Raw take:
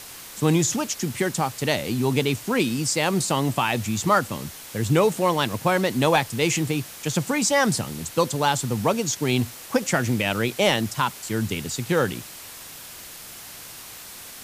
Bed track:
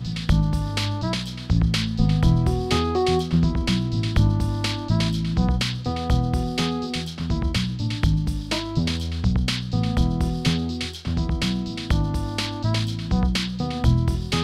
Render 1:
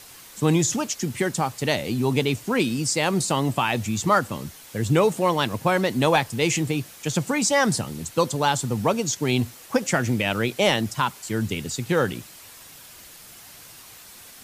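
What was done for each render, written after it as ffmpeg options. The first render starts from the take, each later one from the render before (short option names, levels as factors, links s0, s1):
-af "afftdn=nr=6:nf=-41"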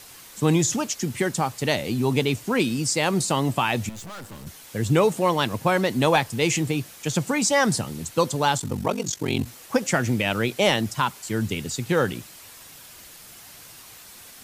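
-filter_complex "[0:a]asettb=1/sr,asplit=3[s0][s1][s2];[s0]atrim=end=3.894[s3];[s1]atrim=start=3.89:end=4.47,asetpts=PTS-STARTPTS,afade=t=in:d=0.004:c=qsin,afade=t=out:st=0.576:d=0.004:c=qsin,aeval=exprs='(tanh(70.8*val(0)+0.55)-tanh(0.55))/70.8':c=same[s4];[s2]atrim=start=4.466[s5];[s3][s4]acrossfade=d=0.004:c1=hsin:c2=qsin[s6];[s6][s5]acrossfade=d=0.004:c1=qsin:c2=hsin,asettb=1/sr,asplit=3[s7][s8][s9];[s7]atrim=end=8.584[s10];[s8]atrim=start=8.58:end=9.47,asetpts=PTS-STARTPTS,afade=t=in:d=0.004:c=qsin,afade=t=out:st=0.886:d=0.004:c=qsin,aeval=exprs='val(0)*sin(2*PI*23*n/s)':c=same[s11];[s9]atrim=start=9.466[s12];[s10][s11]acrossfade=d=0.004:c1=hsin:c2=qsin[s13];[s13][s12]acrossfade=d=0.004:c1=qsin:c2=hsin"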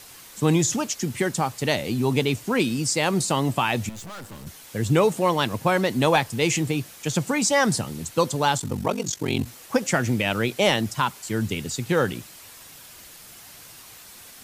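-af anull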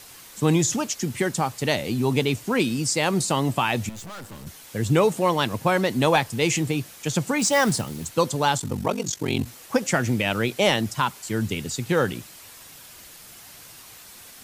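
-filter_complex "[0:a]asettb=1/sr,asplit=3[s0][s1][s2];[s0]atrim=end=7.394[s3];[s1]atrim=start=7.39:end=8.14,asetpts=PTS-STARTPTS,afade=t=in:d=0.004:c=qsin,afade=t=out:st=0.746:d=0.004:c=qsin,acrusher=bits=4:mode=log:mix=0:aa=0.000001[s4];[s2]atrim=start=8.136[s5];[s3][s4]acrossfade=d=0.004:c1=hsin:c2=qsin[s6];[s6][s5]acrossfade=d=0.004:c1=qsin:c2=hsin"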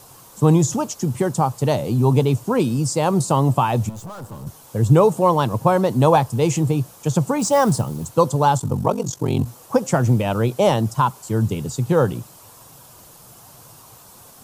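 -af "equalizer=f=125:t=o:w=1:g=10,equalizer=f=500:t=o:w=1:g=4,equalizer=f=1000:t=o:w=1:g=8,equalizer=f=2000:t=o:w=1:g=-11,equalizer=f=4000:t=o:w=1:g=-4"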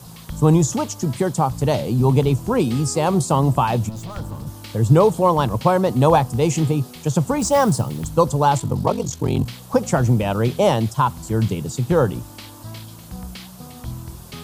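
-filter_complex "[1:a]volume=0.224[s0];[0:a][s0]amix=inputs=2:normalize=0"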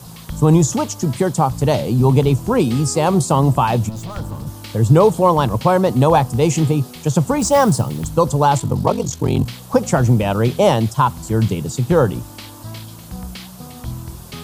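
-af "volume=1.41,alimiter=limit=0.794:level=0:latency=1"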